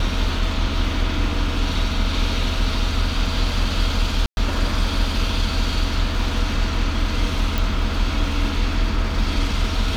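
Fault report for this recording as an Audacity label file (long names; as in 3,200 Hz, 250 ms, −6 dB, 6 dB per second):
4.260000	4.370000	drop-out 111 ms
7.580000	7.580000	click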